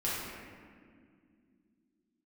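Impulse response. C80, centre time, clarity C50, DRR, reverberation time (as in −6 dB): 0.5 dB, 122 ms, −2.5 dB, −8.5 dB, 2.2 s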